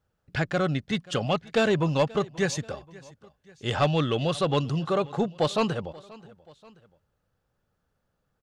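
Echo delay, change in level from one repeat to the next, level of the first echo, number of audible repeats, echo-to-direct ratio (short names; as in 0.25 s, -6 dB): 0.532 s, -5.5 dB, -22.0 dB, 2, -21.0 dB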